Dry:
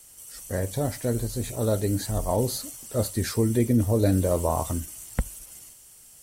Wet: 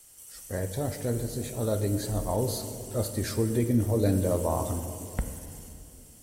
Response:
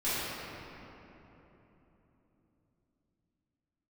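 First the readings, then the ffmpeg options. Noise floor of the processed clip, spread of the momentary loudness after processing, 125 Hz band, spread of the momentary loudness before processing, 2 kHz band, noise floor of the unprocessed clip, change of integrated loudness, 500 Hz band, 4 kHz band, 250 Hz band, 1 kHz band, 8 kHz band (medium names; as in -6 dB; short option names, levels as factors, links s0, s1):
-52 dBFS, 18 LU, -2.5 dB, 16 LU, -3.5 dB, -51 dBFS, -3.0 dB, -2.5 dB, -3.5 dB, -3.0 dB, -3.5 dB, -3.5 dB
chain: -filter_complex "[0:a]asplit=2[s0][s1];[1:a]atrim=start_sample=2205,asetrate=61740,aresample=44100[s2];[s1][s2]afir=irnorm=-1:irlink=0,volume=0.178[s3];[s0][s3]amix=inputs=2:normalize=0,volume=0.596"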